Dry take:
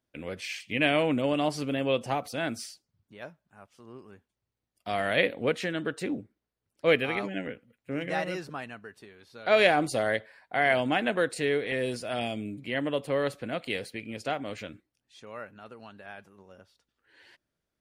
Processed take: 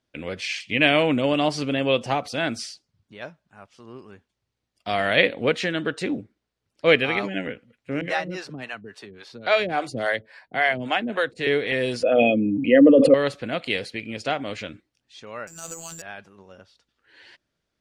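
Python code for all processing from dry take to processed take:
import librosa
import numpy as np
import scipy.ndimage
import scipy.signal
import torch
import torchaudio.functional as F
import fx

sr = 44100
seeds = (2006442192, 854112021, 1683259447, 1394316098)

y = fx.chain(x, sr, fx.harmonic_tremolo(hz=3.6, depth_pct=100, crossover_hz=410.0),
    fx.band_squash(depth_pct=40), at=(8.01, 11.47))
y = fx.chain(y, sr, fx.envelope_sharpen(power=2.0),
    fx.small_body(hz=(270.0, 500.0, 1200.0, 2500.0), ring_ms=55, db=17),
    fx.sustainer(db_per_s=36.0), at=(12.03, 13.14))
y = fx.chain(y, sr, fx.transient(attack_db=5, sustain_db=11),
    fx.robotise(hz=165.0),
    fx.resample_bad(factor=6, down='none', up='zero_stuff'), at=(15.47, 16.02))
y = scipy.signal.sosfilt(scipy.signal.butter(2, 4900.0, 'lowpass', fs=sr, output='sos'), y)
y = fx.high_shelf(y, sr, hz=3800.0, db=9.5)
y = y * 10.0 ** (5.0 / 20.0)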